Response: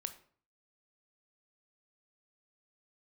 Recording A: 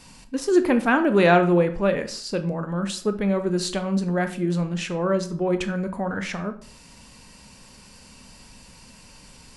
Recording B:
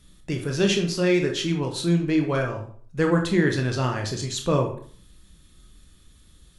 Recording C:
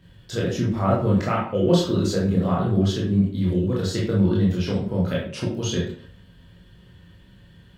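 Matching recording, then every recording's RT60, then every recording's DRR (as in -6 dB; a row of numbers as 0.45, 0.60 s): A; 0.50, 0.50, 0.50 s; 8.5, 2.5, -5.5 dB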